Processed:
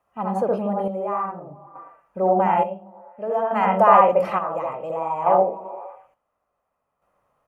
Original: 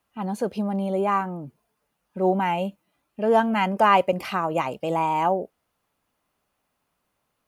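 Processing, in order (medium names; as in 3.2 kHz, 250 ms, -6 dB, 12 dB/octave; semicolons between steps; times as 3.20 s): comb 1.6 ms, depth 32%; reverberation, pre-delay 68 ms, DRR -1 dB; in parallel at 0 dB: compression, threshold -25 dBFS, peak gain reduction 14.5 dB; on the sum: treble shelf 11 kHz -9.5 dB; on a send: repeats whose band climbs or falls 116 ms, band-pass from 170 Hz, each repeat 0.7 oct, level -11.5 dB; on the sum: square tremolo 0.57 Hz, depth 60%, duty 50%; ten-band graphic EQ 500 Hz +6 dB, 1 kHz +9 dB, 4 kHz -8 dB; trim -8.5 dB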